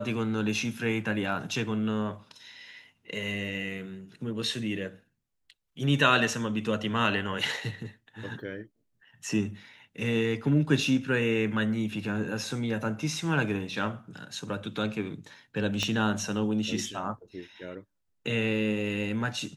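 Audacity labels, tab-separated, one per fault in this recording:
15.830000	15.830000	pop -15 dBFS

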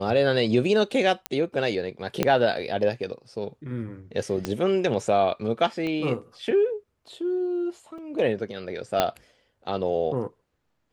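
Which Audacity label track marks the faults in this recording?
1.260000	1.260000	pop -11 dBFS
2.230000	2.230000	pop -7 dBFS
4.450000	4.450000	pop -13 dBFS
5.870000	5.870000	pop -20 dBFS
7.980000	7.980000	dropout 4.2 ms
9.000000	9.000000	pop -6 dBFS

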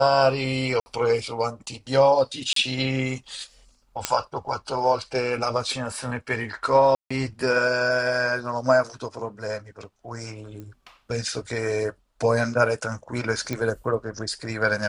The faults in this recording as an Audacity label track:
0.800000	0.860000	dropout 60 ms
2.530000	2.560000	dropout 33 ms
4.050000	4.050000	pop -5 dBFS
6.950000	7.110000	dropout 155 ms
10.600000	10.600000	pop -27 dBFS
13.530000	13.530000	pop -15 dBFS

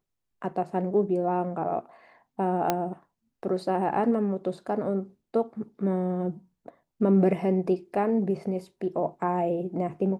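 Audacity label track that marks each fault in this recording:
2.700000	2.700000	pop -9 dBFS

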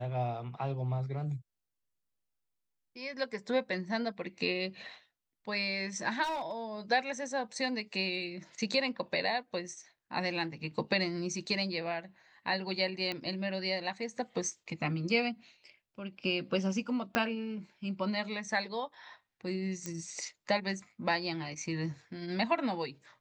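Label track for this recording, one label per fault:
6.230000	6.520000	clipped -31 dBFS
13.120000	13.120000	pop -22 dBFS
17.150000	17.150000	pop -14 dBFS
19.860000	19.860000	pop -23 dBFS

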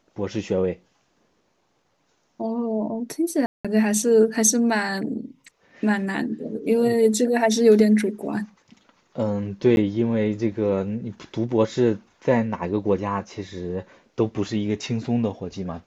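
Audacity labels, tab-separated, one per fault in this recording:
3.460000	3.650000	dropout 186 ms
9.760000	9.770000	dropout 11 ms

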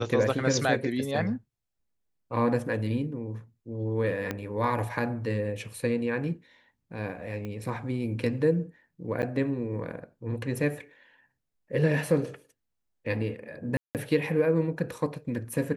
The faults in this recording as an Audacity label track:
4.310000	4.310000	pop -16 dBFS
7.450000	7.450000	pop -25 dBFS
9.220000	9.230000	dropout 9.4 ms
13.770000	13.950000	dropout 178 ms

